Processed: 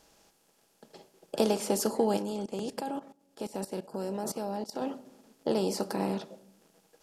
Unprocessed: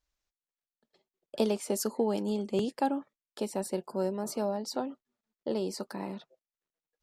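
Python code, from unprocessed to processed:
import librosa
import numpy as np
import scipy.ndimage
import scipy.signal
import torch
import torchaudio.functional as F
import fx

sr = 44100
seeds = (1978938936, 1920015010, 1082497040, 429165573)

y = fx.bin_compress(x, sr, power=0.6)
y = fx.room_shoebox(y, sr, seeds[0], volume_m3=2200.0, walls='furnished', distance_m=0.67)
y = fx.level_steps(y, sr, step_db=17, at=(2.17, 4.82))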